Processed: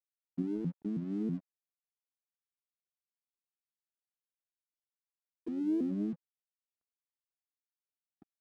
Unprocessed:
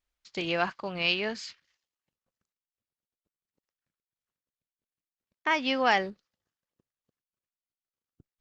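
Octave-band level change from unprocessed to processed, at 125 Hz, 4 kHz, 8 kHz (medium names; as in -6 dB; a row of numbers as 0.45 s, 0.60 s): +3.0 dB, under -35 dB, no reading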